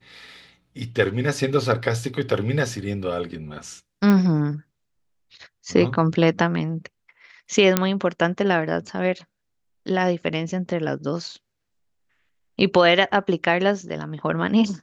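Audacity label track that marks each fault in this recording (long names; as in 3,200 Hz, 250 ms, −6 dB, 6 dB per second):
4.100000	4.100000	click −9 dBFS
7.770000	7.770000	click −2 dBFS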